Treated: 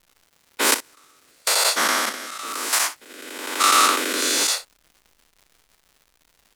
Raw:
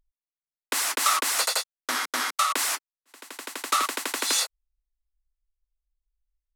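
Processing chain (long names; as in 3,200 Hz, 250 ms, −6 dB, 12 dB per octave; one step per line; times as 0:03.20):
every bin's largest magnitude spread in time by 240 ms
0:00.74–0:01.47: noise gate −6 dBFS, range −37 dB
harmonic and percussive parts rebalanced harmonic −4 dB
0:02.09–0:02.73: output level in coarse steps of 16 dB
rotating-speaker cabinet horn 1 Hz
surface crackle 230 per second −47 dBFS
ambience of single reflections 37 ms −13 dB, 61 ms −15 dB
level +5 dB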